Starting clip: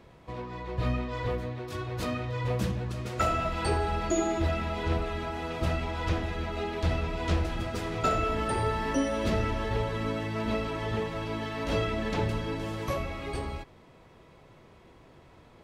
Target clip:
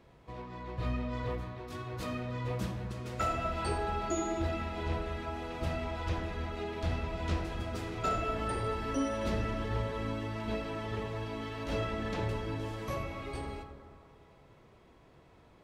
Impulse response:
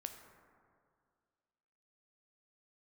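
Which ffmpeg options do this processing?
-filter_complex "[1:a]atrim=start_sample=2205[s0];[0:a][s0]afir=irnorm=-1:irlink=0,volume=0.794"

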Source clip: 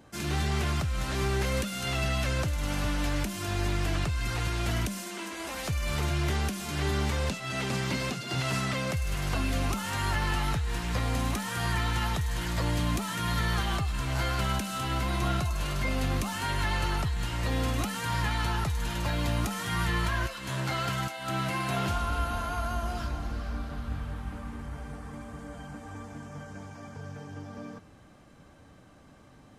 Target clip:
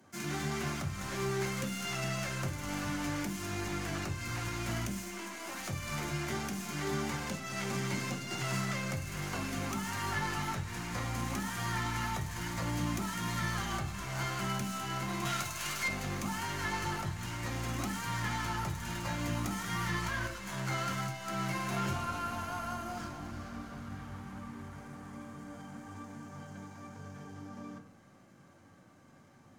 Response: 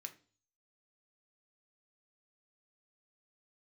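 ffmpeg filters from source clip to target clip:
-filter_complex "[0:a]asettb=1/sr,asplit=3[s0][s1][s2];[s0]atrim=end=15.254[s3];[s1]atrim=start=15.25:end=15.88,asetpts=PTS-STARTPTS,afade=t=in:d=0.004:c=qsin,afade=t=out:st=0.626:d=0.004:c=qsin,tiltshelf=f=930:g=-8[s4];[s2]atrim=start=15.876[s5];[s3][s4]acrossfade=d=0.004:c1=hsin:c2=qsin[s6];[s6][s5]acrossfade=d=0.004:c1=qsin:c2=hsin,acrossover=split=230|1400[s7][s8][s9];[s9]aeval=exprs='max(val(0),0)':c=same[s10];[s7][s8][s10]amix=inputs=3:normalize=0[s11];[1:a]atrim=start_sample=2205,asetrate=38808,aresample=44100[s12];[s11][s12]afir=irnorm=-1:irlink=0,volume=1.41"

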